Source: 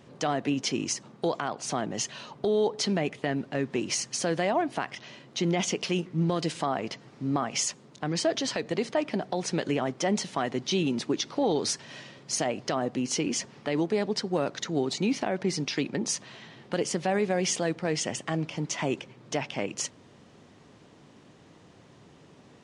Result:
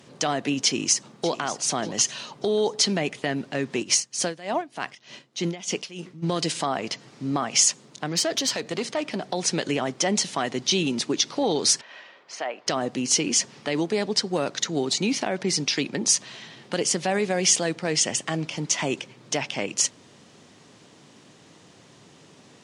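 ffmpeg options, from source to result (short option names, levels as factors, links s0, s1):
-filter_complex "[0:a]asplit=2[s0][s1];[s1]afade=t=in:st=0.64:d=0.01,afade=t=out:st=1.42:d=0.01,aecho=0:1:590|1180|1770:0.177828|0.0622398|0.0217839[s2];[s0][s2]amix=inputs=2:normalize=0,asplit=3[s3][s4][s5];[s3]afade=t=out:st=3.82:d=0.02[s6];[s4]aeval=exprs='val(0)*pow(10,-18*(0.5-0.5*cos(2*PI*3.3*n/s))/20)':c=same,afade=t=in:st=3.82:d=0.02,afade=t=out:st=6.22:d=0.02[s7];[s5]afade=t=in:st=6.22:d=0.02[s8];[s6][s7][s8]amix=inputs=3:normalize=0,asettb=1/sr,asplit=3[s9][s10][s11];[s9]atrim=end=8.064[s12];[s10]atrim=start=8.06:end=9.26,asetpts=PTS-STARTPTS,afade=t=in:d=0.004:c=qsin,afade=t=out:st=1.196:d=0.004:c=qsin,aeval=exprs='(tanh(12.6*val(0)+0.25)-tanh(0.25))/12.6':c=same[s13];[s11]atrim=start=9.256[s14];[s12][s13]acrossfade=d=0.004:c1=hsin:c2=qsin[s15];[s15][s14]acrossfade=d=0.004:c1=qsin:c2=hsin,asettb=1/sr,asplit=3[s16][s17][s18];[s16]atrim=end=11.814[s19];[s17]atrim=start=11.81:end=12.67,asetpts=PTS-STARTPTS,afade=t=in:d=0.004:c=qsin,afade=t=out:st=0.856:d=0.004:c=qsin,highpass=630,lowpass=2000[s20];[s18]atrim=start=12.666[s21];[s19][s20]acrossfade=d=0.004:c1=hsin:c2=qsin[s22];[s22][s21]acrossfade=d=0.004:c1=qsin:c2=hsin,highpass=100,equalizer=f=9000:t=o:w=2.9:g=9.5,volume=1.19"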